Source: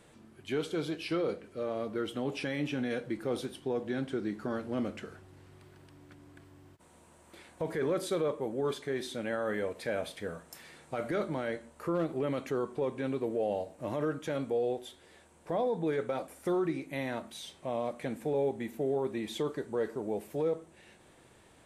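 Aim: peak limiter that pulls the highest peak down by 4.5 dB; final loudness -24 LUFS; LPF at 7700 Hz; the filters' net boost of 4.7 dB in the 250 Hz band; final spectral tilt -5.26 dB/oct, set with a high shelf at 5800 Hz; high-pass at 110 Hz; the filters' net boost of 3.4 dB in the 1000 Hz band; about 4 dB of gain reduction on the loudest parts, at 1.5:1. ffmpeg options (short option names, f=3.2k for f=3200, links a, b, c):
-af "highpass=110,lowpass=7.7k,equalizer=f=250:t=o:g=6,equalizer=f=1k:t=o:g=4.5,highshelf=f=5.8k:g=-4.5,acompressor=threshold=-35dB:ratio=1.5,volume=12dB,alimiter=limit=-13.5dB:level=0:latency=1"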